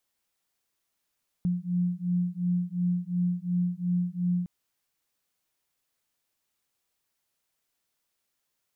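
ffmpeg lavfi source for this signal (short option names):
-f lavfi -i "aevalsrc='0.0398*(sin(2*PI*176*t)+sin(2*PI*178.8*t))':d=3.01:s=44100"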